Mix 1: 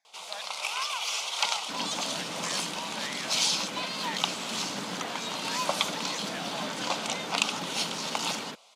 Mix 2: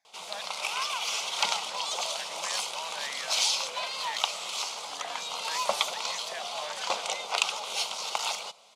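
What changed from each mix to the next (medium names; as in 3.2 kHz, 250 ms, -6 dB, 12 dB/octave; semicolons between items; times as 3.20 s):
second sound: muted; master: add bass shelf 410 Hz +6.5 dB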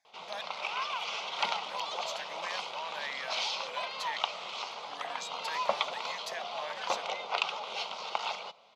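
background: add distance through air 240 m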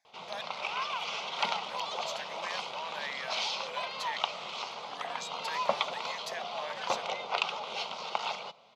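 background: add bass shelf 200 Hz +11 dB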